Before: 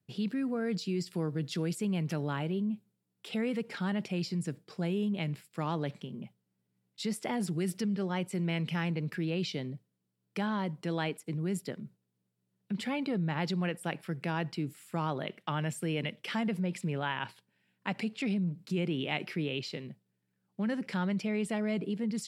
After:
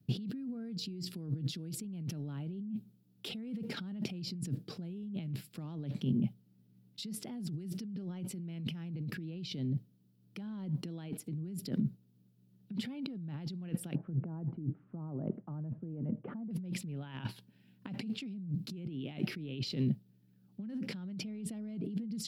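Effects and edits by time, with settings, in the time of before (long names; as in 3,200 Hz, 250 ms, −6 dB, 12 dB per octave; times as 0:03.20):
0:13.95–0:16.51: low-pass filter 1,100 Hz 24 dB per octave
whole clip: compressor whose output falls as the input rises −43 dBFS, ratio −1; octave-band graphic EQ 125/250/500/1,000/2,000/8,000 Hz +5/+6/−5/−8/−9/−10 dB; level +1 dB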